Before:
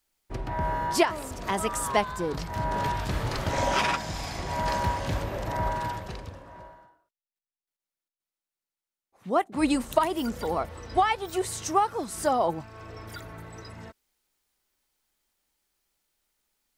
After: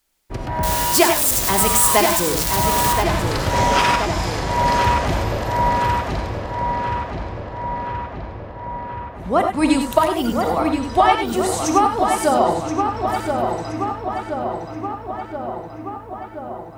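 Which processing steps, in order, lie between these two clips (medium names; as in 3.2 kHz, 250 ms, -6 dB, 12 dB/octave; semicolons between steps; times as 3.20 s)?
0.63–2.93 s: zero-crossing glitches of -17.5 dBFS; filtered feedback delay 1026 ms, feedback 69%, low-pass 3.1 kHz, level -5 dB; gated-style reverb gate 120 ms rising, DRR 4.5 dB; trim +6.5 dB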